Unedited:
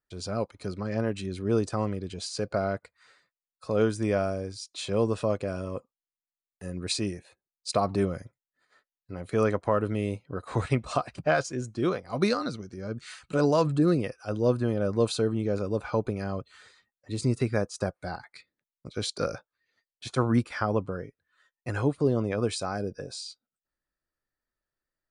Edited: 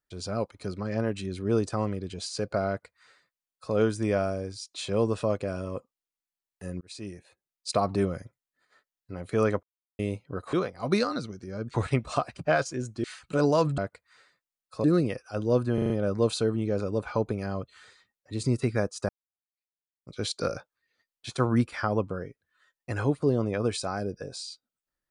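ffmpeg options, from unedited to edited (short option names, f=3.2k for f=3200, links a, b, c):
-filter_complex "[0:a]asplit=14[a][b][c][d][e][f][g][h][i][j][k][l][m][n];[a]atrim=end=6.81,asetpts=PTS-STARTPTS,afade=t=out:st=6.806:d=0.004:c=hsin[o];[b]atrim=start=6.81:end=9.63,asetpts=PTS-STARTPTS,afade=t=in:d=0.96:c=qsin,afade=t=out:st=2.816:d=0.004:c=hsin[p];[c]atrim=start=9.63:end=9.99,asetpts=PTS-STARTPTS,volume=0[q];[d]atrim=start=9.99:end=10.532,asetpts=PTS-STARTPTS,afade=t=in:d=0.004:c=hsin[r];[e]atrim=start=11.828:end=13.042[s];[f]atrim=start=10.528:end=11.832[t];[g]atrim=start=13.038:end=13.782[u];[h]atrim=start=2.678:end=3.742[v];[i]atrim=start=13.778:end=14.722[w];[j]atrim=start=14.678:end=14.722[x];[k]atrim=start=14.678:end=14.722[y];[l]atrim=start=14.678:end=14.722[z];[m]atrim=start=14.678:end=17.87,asetpts=PTS-STARTPTS,afade=t=out:st=3.188:d=0.004:c=hsin[aa];[n]atrim=start=17.87,asetpts=PTS-STARTPTS,afade=t=in:d=1.04:c=exp[ab];[o][p][q][r]concat=n=4:v=0:a=1[ac];[ac][s]acrossfade=d=0.004:c1=hsin:c2=hsin[ad];[ad][t]acrossfade=d=0.004:c1=hsin:c2=hsin[ae];[ae][u]acrossfade=d=0.004:c1=hsin:c2=hsin[af];[af][v]acrossfade=d=0.004:c1=hsin:c2=hsin[ag];[ag][w]acrossfade=d=0.004:c1=hsin:c2=hsin[ah];[ah][x]acrossfade=d=0.004:c1=hsin:c2=hsin[ai];[ai][y]acrossfade=d=0.004:c1=hsin:c2=hsin[aj];[aj][z]acrossfade=d=0.004:c1=hsin:c2=hsin[ak];[aa][ab]concat=n=2:v=0:a=1[al];[ak][al]acrossfade=d=0.004:c1=hsin:c2=hsin"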